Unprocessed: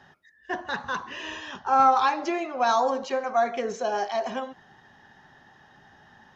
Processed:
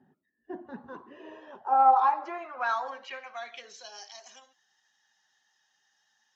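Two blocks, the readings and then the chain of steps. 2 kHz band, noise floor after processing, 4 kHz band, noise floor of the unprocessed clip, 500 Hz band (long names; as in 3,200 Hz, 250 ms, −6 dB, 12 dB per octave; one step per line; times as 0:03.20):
−7.0 dB, −76 dBFS, −10.0 dB, −57 dBFS, −13.0 dB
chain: spectral magnitudes quantised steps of 15 dB
band-pass filter sweep 260 Hz → 6,400 Hz, 0:00.72–0:04.21
level +2 dB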